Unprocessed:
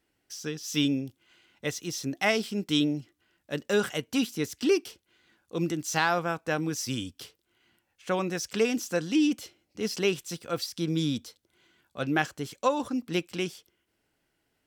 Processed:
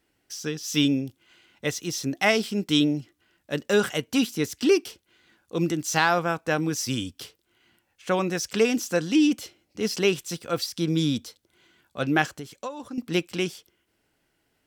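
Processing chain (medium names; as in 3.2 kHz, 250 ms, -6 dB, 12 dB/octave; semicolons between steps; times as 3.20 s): 12.30–12.98 s: compression 2.5:1, threshold -42 dBFS, peak gain reduction 15 dB; trim +4 dB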